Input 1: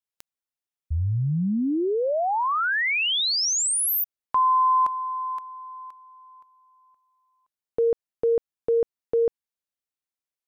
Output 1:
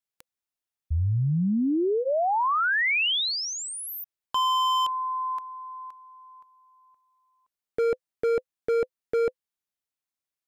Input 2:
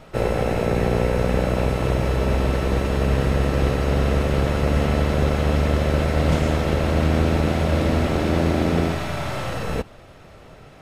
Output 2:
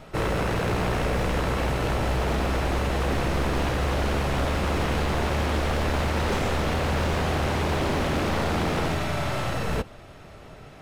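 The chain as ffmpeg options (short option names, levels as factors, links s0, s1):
-filter_complex "[0:a]acrossover=split=3900[s0][s1];[s1]acompressor=threshold=0.0141:ratio=4:attack=1:release=60[s2];[s0][s2]amix=inputs=2:normalize=0,bandreject=f=510:w=13,aeval=exprs='0.106*(abs(mod(val(0)/0.106+3,4)-2)-1)':c=same"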